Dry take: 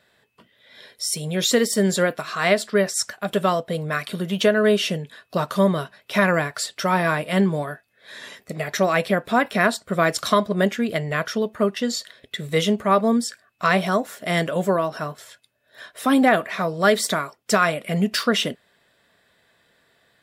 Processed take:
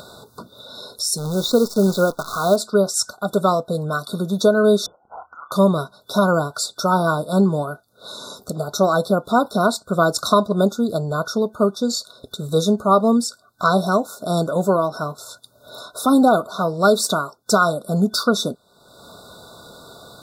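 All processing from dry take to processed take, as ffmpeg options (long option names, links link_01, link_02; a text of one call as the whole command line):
ffmpeg -i in.wav -filter_complex "[0:a]asettb=1/sr,asplit=3[link_01][link_02][link_03];[link_01]atrim=end=1.184[link_04];[link_02]atrim=start=1.18:end=2.56,asetpts=PTS-STARTPTS,afade=type=in:duration=0.004:curve=qsin,afade=type=out:start_time=1.376:duration=0.004:curve=qsin,lowpass=3500,acrusher=bits=6:dc=4:mix=0:aa=0.000001[link_05];[link_03]atrim=start=2.556[link_06];[link_04][link_05]acrossfade=duration=0.004:curve1=hsin:curve2=qsin[link_07];[link_07][link_06]acrossfade=duration=0.004:curve1=qsin:curve2=hsin,asettb=1/sr,asplit=3[link_08][link_09][link_10];[link_08]atrim=end=4.864[link_11];[link_09]atrim=start=4.86:end=5.52,asetpts=PTS-STARTPTS,afade=type=in:duration=0.004:curve=qsin,afade=type=out:start_time=0.656:duration=0.004:curve=qsin,acompressor=threshold=-35dB:ratio=4:attack=3.2:release=140:knee=1:detection=peak,asplit=2[link_12][link_13];[link_13]adelay=30,volume=-10dB[link_14];[link_12][link_14]amix=inputs=2:normalize=0,atrim=end_sample=29106,lowpass=frequency=2100:width_type=q:width=0.5098,lowpass=frequency=2100:width_type=q:width=0.6013,lowpass=frequency=2100:width_type=q:width=0.9,lowpass=frequency=2100:width_type=q:width=2.563,afreqshift=-2500[link_15];[link_10]atrim=start=5.516[link_16];[link_11][link_15]acrossfade=duration=0.004:curve1=hsin:curve2=qsin[link_17];[link_17][link_16]acrossfade=duration=0.004:curve1=qsin:curve2=hsin,acompressor=mode=upward:threshold=-26dB:ratio=2.5,afftfilt=real='re*(1-between(b*sr/4096,1500,3500))':imag='im*(1-between(b*sr/4096,1500,3500))':win_size=4096:overlap=0.75,volume=3dB" out.wav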